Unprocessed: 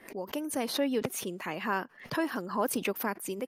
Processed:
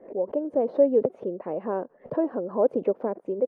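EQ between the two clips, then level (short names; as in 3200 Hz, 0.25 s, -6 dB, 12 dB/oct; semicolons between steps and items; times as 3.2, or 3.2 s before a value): synth low-pass 540 Hz, resonance Q 3.4; low shelf 210 Hz -8 dB; +4.0 dB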